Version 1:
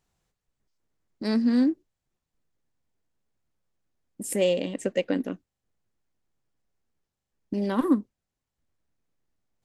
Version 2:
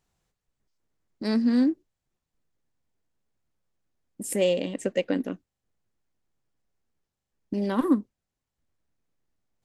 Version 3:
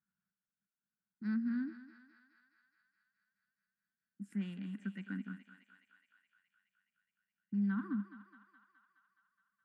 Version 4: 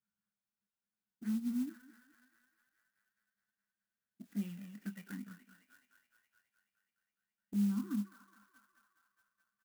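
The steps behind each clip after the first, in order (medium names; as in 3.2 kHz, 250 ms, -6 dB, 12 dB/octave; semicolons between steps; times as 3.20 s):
no audible change
two resonant band-passes 540 Hz, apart 2.9 oct; thinning echo 210 ms, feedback 74%, high-pass 560 Hz, level -10 dB; trim -3 dB
touch-sensitive flanger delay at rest 9.4 ms, full sweep at -33 dBFS; doubling 24 ms -8.5 dB; sampling jitter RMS 0.049 ms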